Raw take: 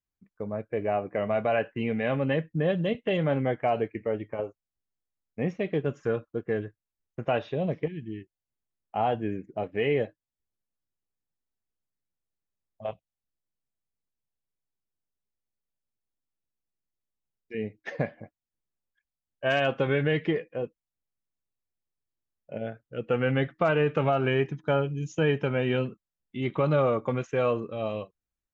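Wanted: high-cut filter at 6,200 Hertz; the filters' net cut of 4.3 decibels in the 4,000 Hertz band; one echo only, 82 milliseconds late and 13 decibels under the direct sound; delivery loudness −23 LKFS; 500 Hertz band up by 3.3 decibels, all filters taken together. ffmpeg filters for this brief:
ffmpeg -i in.wav -af "lowpass=6200,equalizer=frequency=500:width_type=o:gain=4,equalizer=frequency=4000:width_type=o:gain=-7,aecho=1:1:82:0.224,volume=3.5dB" out.wav

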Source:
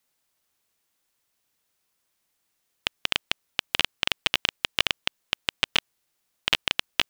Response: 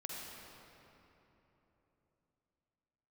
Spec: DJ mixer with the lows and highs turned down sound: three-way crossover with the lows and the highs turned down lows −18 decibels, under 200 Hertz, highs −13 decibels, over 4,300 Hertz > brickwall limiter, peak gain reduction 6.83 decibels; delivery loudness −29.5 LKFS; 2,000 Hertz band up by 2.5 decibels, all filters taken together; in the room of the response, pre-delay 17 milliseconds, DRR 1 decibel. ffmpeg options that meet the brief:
-filter_complex "[0:a]equalizer=frequency=2000:width_type=o:gain=4,asplit=2[link_01][link_02];[1:a]atrim=start_sample=2205,adelay=17[link_03];[link_02][link_03]afir=irnorm=-1:irlink=0,volume=-0.5dB[link_04];[link_01][link_04]amix=inputs=2:normalize=0,acrossover=split=200 4300:gain=0.126 1 0.224[link_05][link_06][link_07];[link_05][link_06][link_07]amix=inputs=3:normalize=0,volume=-1dB,alimiter=limit=-9dB:level=0:latency=1"

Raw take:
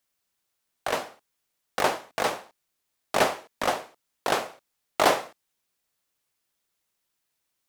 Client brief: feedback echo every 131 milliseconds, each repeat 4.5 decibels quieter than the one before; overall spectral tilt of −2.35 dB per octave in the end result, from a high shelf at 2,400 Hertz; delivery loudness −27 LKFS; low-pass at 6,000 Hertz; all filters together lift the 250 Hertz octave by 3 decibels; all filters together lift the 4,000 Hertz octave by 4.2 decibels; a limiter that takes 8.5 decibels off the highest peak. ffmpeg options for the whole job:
ffmpeg -i in.wav -af "lowpass=6000,equalizer=frequency=250:width_type=o:gain=4,highshelf=frequency=2400:gain=3.5,equalizer=frequency=4000:width_type=o:gain=3,alimiter=limit=-12dB:level=0:latency=1,aecho=1:1:131|262|393|524|655|786|917|1048|1179:0.596|0.357|0.214|0.129|0.0772|0.0463|0.0278|0.0167|0.01,volume=1dB" out.wav

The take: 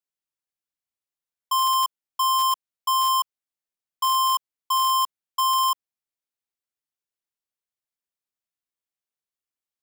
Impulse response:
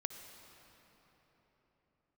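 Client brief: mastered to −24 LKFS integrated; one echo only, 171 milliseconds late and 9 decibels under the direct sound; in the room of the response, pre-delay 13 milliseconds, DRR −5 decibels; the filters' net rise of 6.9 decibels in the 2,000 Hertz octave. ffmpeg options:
-filter_complex "[0:a]equalizer=frequency=2000:width_type=o:gain=8.5,aecho=1:1:171:0.355,asplit=2[link_01][link_02];[1:a]atrim=start_sample=2205,adelay=13[link_03];[link_02][link_03]afir=irnorm=-1:irlink=0,volume=6dB[link_04];[link_01][link_04]amix=inputs=2:normalize=0,volume=-7.5dB"

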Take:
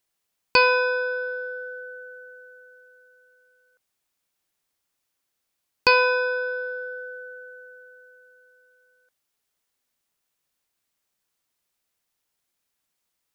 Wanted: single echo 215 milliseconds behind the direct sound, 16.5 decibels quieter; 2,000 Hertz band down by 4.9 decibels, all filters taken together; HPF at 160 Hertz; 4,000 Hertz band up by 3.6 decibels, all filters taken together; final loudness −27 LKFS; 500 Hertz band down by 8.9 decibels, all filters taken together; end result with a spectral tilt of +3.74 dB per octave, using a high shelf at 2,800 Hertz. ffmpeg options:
ffmpeg -i in.wav -af "highpass=160,equalizer=frequency=500:width_type=o:gain=-8.5,equalizer=frequency=2000:width_type=o:gain=-8,highshelf=frequency=2800:gain=-3.5,equalizer=frequency=4000:width_type=o:gain=9,aecho=1:1:215:0.15,volume=-1.5dB" out.wav

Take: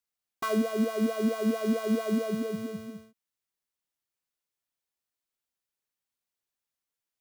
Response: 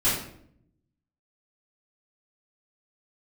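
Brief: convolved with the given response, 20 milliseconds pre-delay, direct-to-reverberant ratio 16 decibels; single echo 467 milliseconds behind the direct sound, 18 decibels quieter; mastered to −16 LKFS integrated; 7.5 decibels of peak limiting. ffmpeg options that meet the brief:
-filter_complex "[0:a]alimiter=limit=-24dB:level=0:latency=1,aecho=1:1:467:0.126,asplit=2[link_01][link_02];[1:a]atrim=start_sample=2205,adelay=20[link_03];[link_02][link_03]afir=irnorm=-1:irlink=0,volume=-29dB[link_04];[link_01][link_04]amix=inputs=2:normalize=0,volume=17dB"

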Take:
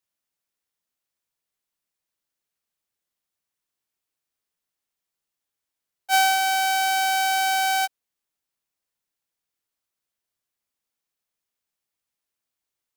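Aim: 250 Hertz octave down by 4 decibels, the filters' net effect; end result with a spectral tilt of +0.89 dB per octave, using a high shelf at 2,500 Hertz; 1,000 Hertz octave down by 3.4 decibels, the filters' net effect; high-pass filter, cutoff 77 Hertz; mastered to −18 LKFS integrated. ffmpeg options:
ffmpeg -i in.wav -af "highpass=77,equalizer=frequency=250:width_type=o:gain=-5.5,equalizer=frequency=1000:width_type=o:gain=-4,highshelf=frequency=2500:gain=-6,volume=7dB" out.wav

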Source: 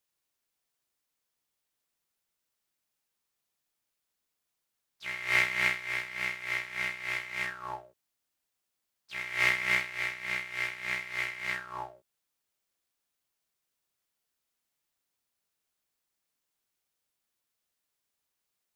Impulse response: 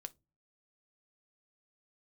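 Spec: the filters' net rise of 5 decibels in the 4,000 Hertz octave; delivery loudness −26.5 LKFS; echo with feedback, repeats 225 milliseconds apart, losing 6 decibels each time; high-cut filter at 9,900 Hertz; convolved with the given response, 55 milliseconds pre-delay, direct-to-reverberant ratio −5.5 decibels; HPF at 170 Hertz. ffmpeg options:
-filter_complex "[0:a]highpass=170,lowpass=9900,equalizer=frequency=4000:width_type=o:gain=7,aecho=1:1:225|450|675|900|1125|1350:0.501|0.251|0.125|0.0626|0.0313|0.0157,asplit=2[link_01][link_02];[1:a]atrim=start_sample=2205,adelay=55[link_03];[link_02][link_03]afir=irnorm=-1:irlink=0,volume=10.5dB[link_04];[link_01][link_04]amix=inputs=2:normalize=0,volume=-4.5dB"

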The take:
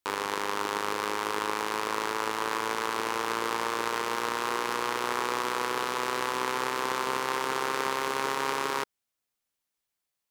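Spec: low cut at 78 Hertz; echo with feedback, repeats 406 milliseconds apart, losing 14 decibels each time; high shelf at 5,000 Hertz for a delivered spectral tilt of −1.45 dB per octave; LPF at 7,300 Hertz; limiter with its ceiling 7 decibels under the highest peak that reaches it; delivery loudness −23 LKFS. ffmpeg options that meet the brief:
ffmpeg -i in.wav -af "highpass=78,lowpass=7300,highshelf=frequency=5000:gain=8,alimiter=limit=-16dB:level=0:latency=1,aecho=1:1:406|812:0.2|0.0399,volume=9.5dB" out.wav

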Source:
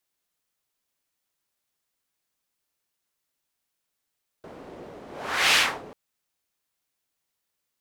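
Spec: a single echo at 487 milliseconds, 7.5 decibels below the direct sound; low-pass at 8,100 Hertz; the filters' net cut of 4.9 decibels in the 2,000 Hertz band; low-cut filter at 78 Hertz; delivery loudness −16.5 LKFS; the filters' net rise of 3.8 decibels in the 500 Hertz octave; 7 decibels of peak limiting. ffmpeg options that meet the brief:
ffmpeg -i in.wav -af "highpass=78,lowpass=8100,equalizer=frequency=500:width_type=o:gain=5,equalizer=frequency=2000:width_type=o:gain=-6.5,alimiter=limit=-17dB:level=0:latency=1,aecho=1:1:487:0.422,volume=14.5dB" out.wav

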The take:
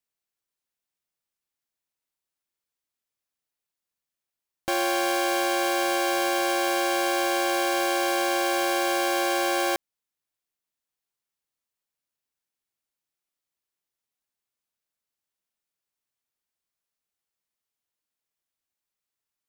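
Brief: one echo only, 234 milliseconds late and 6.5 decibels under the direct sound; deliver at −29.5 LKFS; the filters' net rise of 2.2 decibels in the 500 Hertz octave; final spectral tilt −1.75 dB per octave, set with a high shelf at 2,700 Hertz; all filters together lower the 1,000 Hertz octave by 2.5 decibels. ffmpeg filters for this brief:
ffmpeg -i in.wav -af "equalizer=frequency=500:width_type=o:gain=4.5,equalizer=frequency=1000:width_type=o:gain=-5,highshelf=frequency=2700:gain=-7,aecho=1:1:234:0.473,volume=-4.5dB" out.wav

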